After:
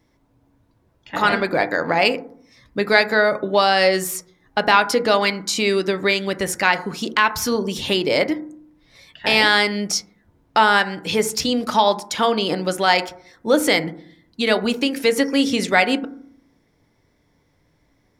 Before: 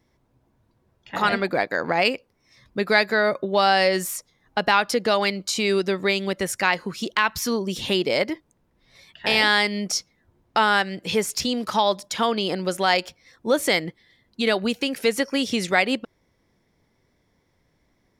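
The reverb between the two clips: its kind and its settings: FDN reverb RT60 0.57 s, low-frequency decay 1.45×, high-frequency decay 0.25×, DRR 9 dB; trim +3 dB

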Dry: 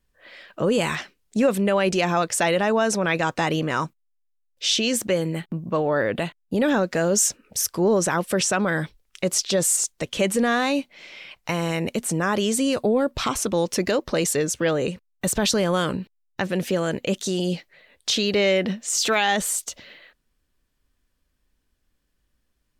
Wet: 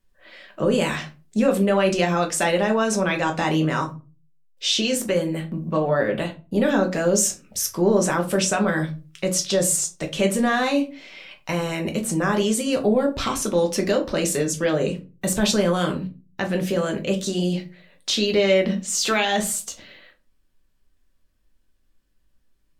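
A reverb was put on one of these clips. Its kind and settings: simulated room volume 130 m³, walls furnished, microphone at 1.1 m; trim -2 dB

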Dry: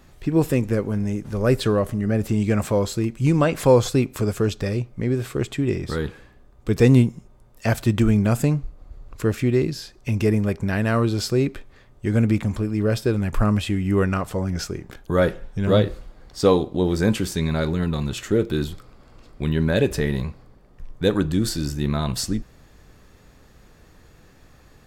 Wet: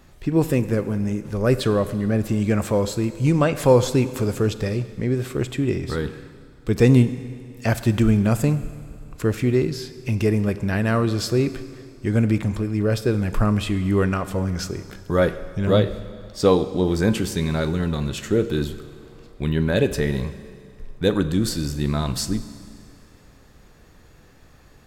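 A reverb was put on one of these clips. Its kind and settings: Schroeder reverb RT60 2.2 s, combs from 32 ms, DRR 13 dB

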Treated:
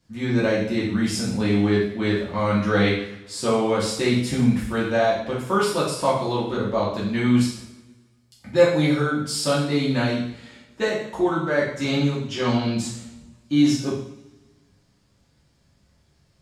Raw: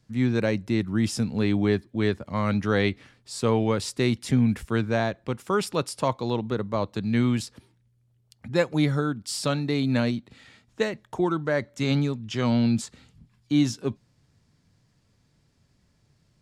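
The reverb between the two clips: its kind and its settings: two-slope reverb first 0.62 s, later 1.7 s, from -20 dB, DRR -8 dB; trim -4 dB

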